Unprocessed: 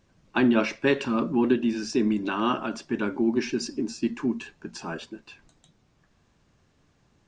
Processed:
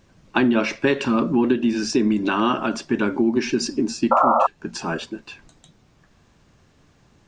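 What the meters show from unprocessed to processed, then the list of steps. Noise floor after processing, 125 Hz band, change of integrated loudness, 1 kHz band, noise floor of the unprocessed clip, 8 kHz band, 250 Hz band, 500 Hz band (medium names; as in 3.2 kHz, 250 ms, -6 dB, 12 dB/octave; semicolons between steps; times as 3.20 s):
-58 dBFS, +5.0 dB, +5.0 dB, +11.0 dB, -66 dBFS, +7.5 dB, +4.5 dB, +5.0 dB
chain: painted sound noise, 4.11–4.47 s, 510–1400 Hz -16 dBFS; compression 3:1, threshold -24 dBFS, peak gain reduction 9 dB; trim +8 dB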